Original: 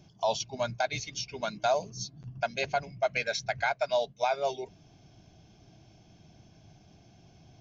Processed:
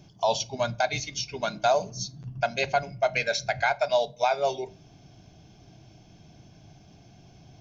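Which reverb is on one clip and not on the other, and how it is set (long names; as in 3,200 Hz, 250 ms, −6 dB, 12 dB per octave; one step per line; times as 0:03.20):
rectangular room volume 300 cubic metres, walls furnished, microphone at 0.31 metres
level +4 dB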